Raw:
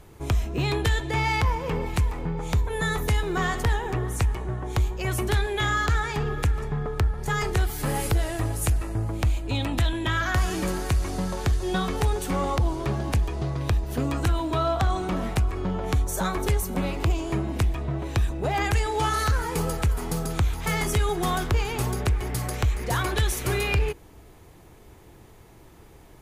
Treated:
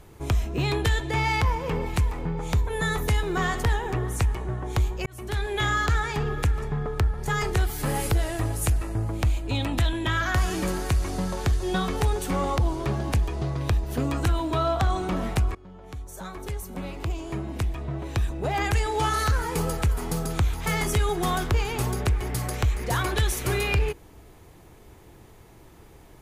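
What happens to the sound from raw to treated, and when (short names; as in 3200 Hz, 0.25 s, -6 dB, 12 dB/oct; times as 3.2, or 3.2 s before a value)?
5.06–5.58 fade in
15.55–18.91 fade in, from -21.5 dB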